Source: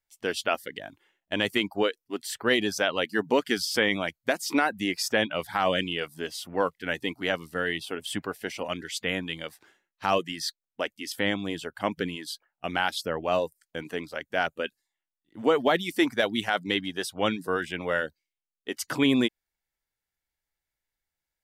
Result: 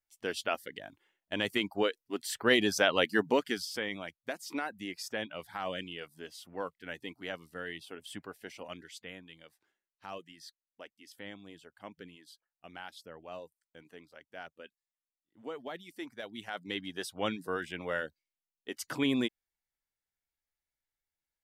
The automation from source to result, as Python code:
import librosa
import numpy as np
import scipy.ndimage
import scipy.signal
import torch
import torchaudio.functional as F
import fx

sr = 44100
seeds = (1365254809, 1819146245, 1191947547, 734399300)

y = fx.gain(x, sr, db=fx.line((1.35, -6.0), (3.08, 0.5), (3.81, -12.0), (8.78, -12.0), (9.2, -19.0), (16.14, -19.0), (16.95, -7.0)))